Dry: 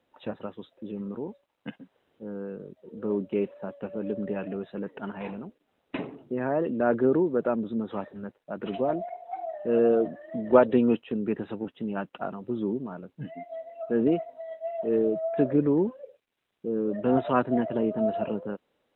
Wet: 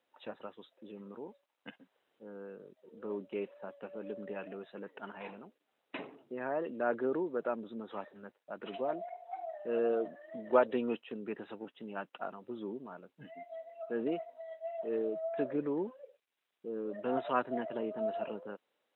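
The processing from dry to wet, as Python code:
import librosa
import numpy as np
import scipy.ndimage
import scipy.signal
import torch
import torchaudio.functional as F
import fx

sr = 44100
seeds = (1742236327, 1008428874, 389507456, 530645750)

y = fx.highpass(x, sr, hz=690.0, slope=6)
y = y * 10.0 ** (-4.0 / 20.0)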